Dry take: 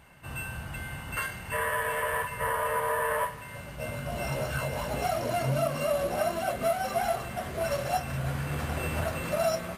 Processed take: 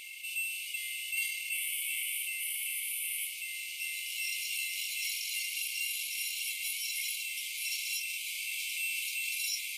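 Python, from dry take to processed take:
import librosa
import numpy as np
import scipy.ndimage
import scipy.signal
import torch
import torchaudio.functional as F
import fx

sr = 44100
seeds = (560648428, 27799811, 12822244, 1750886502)

y = fx.brickwall_highpass(x, sr, low_hz=2100.0)
y = fx.env_flatten(y, sr, amount_pct=50)
y = F.gain(torch.from_numpy(y), 2.0).numpy()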